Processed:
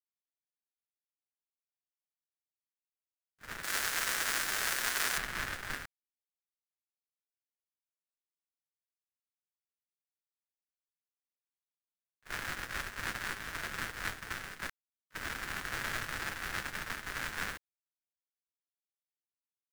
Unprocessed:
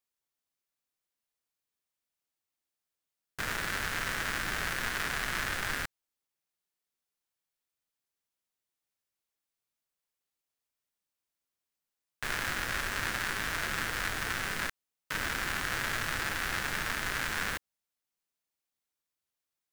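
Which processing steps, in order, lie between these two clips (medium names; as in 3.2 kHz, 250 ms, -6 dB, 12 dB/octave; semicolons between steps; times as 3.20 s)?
3.63–5.18 s: tone controls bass -12 dB, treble +9 dB; gate -31 dBFS, range -37 dB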